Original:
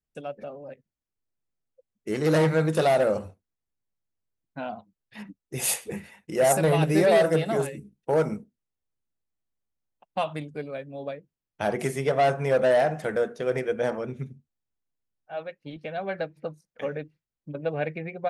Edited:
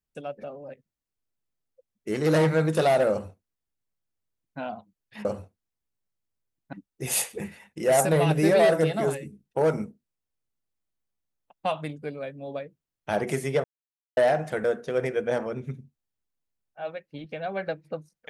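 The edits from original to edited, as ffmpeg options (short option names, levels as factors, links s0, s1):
-filter_complex "[0:a]asplit=5[s0][s1][s2][s3][s4];[s0]atrim=end=5.252[s5];[s1]atrim=start=3.108:end=4.592[s6];[s2]atrim=start=5.248:end=12.16,asetpts=PTS-STARTPTS,afade=t=out:st=6.908:d=0.004:c=hsin[s7];[s3]atrim=start=12.16:end=12.69,asetpts=PTS-STARTPTS,volume=0[s8];[s4]atrim=start=12.69,asetpts=PTS-STARTPTS,afade=t=in:d=0.004:c=hsin[s9];[s5][s6]acrossfade=d=0.004:c1=hsin:c2=hsin[s10];[s7][s8][s9]concat=n=3:v=0:a=1[s11];[s10][s11]acrossfade=d=0.004:c1=hsin:c2=hsin"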